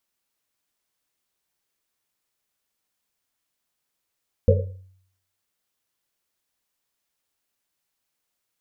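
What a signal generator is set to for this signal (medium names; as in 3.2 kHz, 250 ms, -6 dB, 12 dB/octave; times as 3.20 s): Risset drum, pitch 94 Hz, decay 0.67 s, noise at 500 Hz, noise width 120 Hz, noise 40%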